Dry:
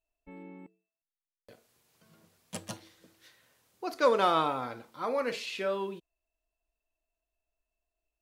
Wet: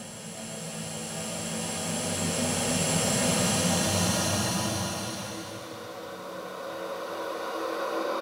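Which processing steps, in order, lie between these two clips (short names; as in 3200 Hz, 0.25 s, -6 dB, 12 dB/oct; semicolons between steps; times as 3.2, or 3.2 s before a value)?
spectral swells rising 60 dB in 1.98 s; Paulstretch 6.2×, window 0.25 s, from 2.01; bouncing-ball echo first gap 0.37 s, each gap 0.75×, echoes 5; gain +7.5 dB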